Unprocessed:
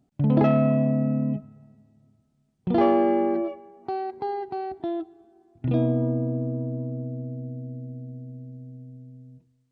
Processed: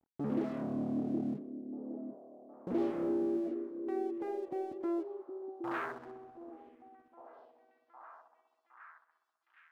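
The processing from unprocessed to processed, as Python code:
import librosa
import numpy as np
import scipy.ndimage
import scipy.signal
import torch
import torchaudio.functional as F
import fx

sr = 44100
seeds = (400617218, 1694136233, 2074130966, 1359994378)

p1 = fx.dereverb_blind(x, sr, rt60_s=1.7)
p2 = fx.fold_sine(p1, sr, drive_db=19, ceiling_db=-10.5)
p3 = p1 + (p2 * librosa.db_to_amplitude(-9.5))
p4 = fx.filter_sweep_bandpass(p3, sr, from_hz=310.0, to_hz=3300.0, start_s=4.61, end_s=6.53, q=2.1)
p5 = np.sign(p4) * np.maximum(np.abs(p4) - 10.0 ** (-51.5 / 20.0), 0.0)
p6 = fx.echo_stepped(p5, sr, ms=765, hz=340.0, octaves=0.7, feedback_pct=70, wet_db=-6.0)
y = p6 * librosa.db_to_amplitude(-8.5)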